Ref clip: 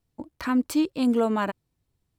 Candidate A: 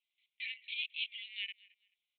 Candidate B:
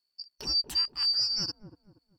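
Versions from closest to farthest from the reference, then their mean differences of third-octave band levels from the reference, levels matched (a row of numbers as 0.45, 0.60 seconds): B, A; 11.0, 17.0 decibels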